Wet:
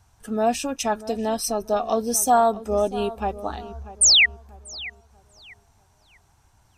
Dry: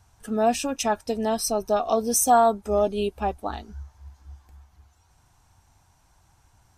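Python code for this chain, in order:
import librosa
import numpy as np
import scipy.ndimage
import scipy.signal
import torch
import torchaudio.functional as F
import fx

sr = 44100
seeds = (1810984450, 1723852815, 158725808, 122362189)

p1 = fx.spec_paint(x, sr, seeds[0], shape='fall', start_s=4.01, length_s=0.25, low_hz=1800.0, high_hz=9500.0, level_db=-14.0)
y = p1 + fx.echo_filtered(p1, sr, ms=639, feedback_pct=36, hz=2600.0, wet_db=-15.5, dry=0)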